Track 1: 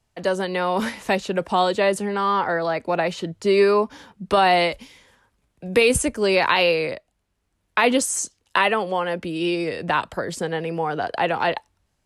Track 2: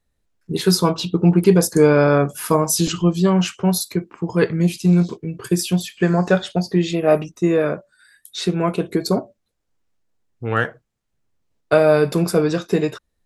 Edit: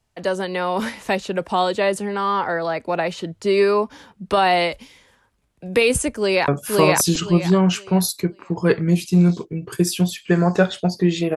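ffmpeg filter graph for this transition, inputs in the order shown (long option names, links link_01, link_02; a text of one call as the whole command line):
ffmpeg -i cue0.wav -i cue1.wav -filter_complex "[0:a]apad=whole_dur=11.36,atrim=end=11.36,atrim=end=6.482[link_01];[1:a]atrim=start=2.198:end=7.08[link_02];[link_01][link_02]acrossfade=duration=0.004:curve1=hsin:curve2=hsin,asplit=2[link_03][link_04];[link_04]afade=type=in:start_time=6.16:duration=0.01,afade=type=out:start_time=6.48:duration=0.01,aecho=0:1:520|1040|1560|2080:1|0.25|0.0625|0.015625[link_05];[link_03][link_05]amix=inputs=2:normalize=0" out.wav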